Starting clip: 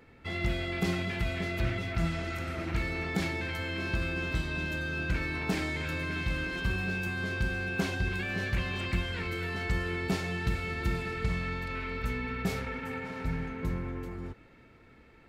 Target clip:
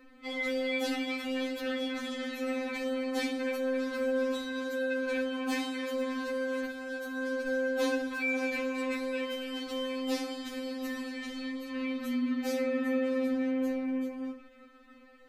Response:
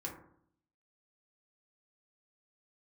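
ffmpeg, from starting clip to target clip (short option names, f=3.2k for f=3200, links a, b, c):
-filter_complex "[0:a]asettb=1/sr,asplit=3[a][b][c];[a]atrim=end=6.304[d];[b]atrim=start=6.3:end=7.47,asetpts=PTS-STARTPTS,afade=t=in:d=0.004:c=qsin,afade=t=out:st=1.166:d=0.004:c=qsin,acompressor=threshold=-31dB:ratio=6[e];[c]atrim=start=7.466[f];[d][e]acrossfade=d=0.004:c1=hsin:c2=qsin[g];[g][f]acrossfade=d=0.004:c1=qsin:c2=hsin,asplit=2[h][i];[1:a]atrim=start_sample=2205,atrim=end_sample=4410[j];[i][j]afir=irnorm=-1:irlink=0,volume=-0.5dB[k];[h][k]amix=inputs=2:normalize=0,afftfilt=real='re*3.46*eq(mod(b,12),0)':imag='im*3.46*eq(mod(b,12),0)':win_size=2048:overlap=0.75"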